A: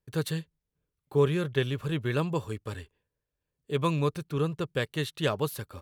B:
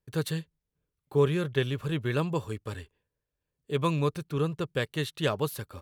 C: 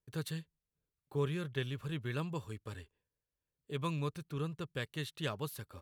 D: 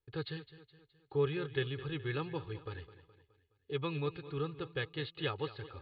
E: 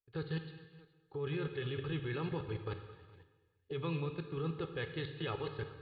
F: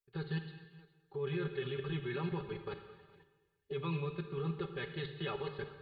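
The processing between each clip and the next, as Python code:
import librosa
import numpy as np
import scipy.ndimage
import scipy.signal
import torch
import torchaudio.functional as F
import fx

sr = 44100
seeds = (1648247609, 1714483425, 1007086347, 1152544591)

y1 = x
y2 = fx.dynamic_eq(y1, sr, hz=520.0, q=0.78, threshold_db=-39.0, ratio=4.0, max_db=-5)
y2 = F.gain(torch.from_numpy(y2), -7.5).numpy()
y3 = scipy.signal.sosfilt(scipy.signal.butter(16, 4500.0, 'lowpass', fs=sr, output='sos'), y2)
y3 = y3 + 0.74 * np.pad(y3, (int(2.4 * sr / 1000.0), 0))[:len(y3)]
y3 = fx.echo_feedback(y3, sr, ms=210, feedback_pct=48, wet_db=-15)
y4 = fx.high_shelf(y3, sr, hz=3600.0, db=-6.0)
y4 = fx.level_steps(y4, sr, step_db=22)
y4 = fx.rev_gated(y4, sr, seeds[0], gate_ms=450, shape='falling', drr_db=6.5)
y4 = F.gain(torch.from_numpy(y4), 6.5).numpy()
y5 = y4 + 0.86 * np.pad(y4, (int(5.1 * sr / 1000.0), 0))[:len(y4)]
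y5 = F.gain(torch.from_numpy(y5), -2.5).numpy()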